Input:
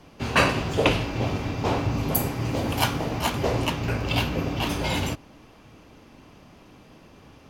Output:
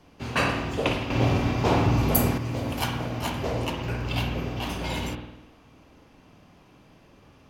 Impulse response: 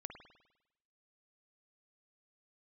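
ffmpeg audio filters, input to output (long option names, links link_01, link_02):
-filter_complex "[1:a]atrim=start_sample=2205[link_01];[0:a][link_01]afir=irnorm=-1:irlink=0,asettb=1/sr,asplit=3[link_02][link_03][link_04];[link_02]atrim=end=1.104[link_05];[link_03]atrim=start=1.1:end=2.38,asetpts=PTS-STARTPTS,afade=type=in:duration=0.004:curve=qsin,afade=type=out:start_time=1.276:duration=0.004:curve=qsin,acontrast=89[link_06];[link_04]atrim=start=2.376[link_07];[link_05][link_06]acrossfade=duration=0.004:curve1=hsin:curve2=qsin[link_08];[link_08][link_07]acrossfade=duration=0.004:curve1=qsin:curve2=hsin"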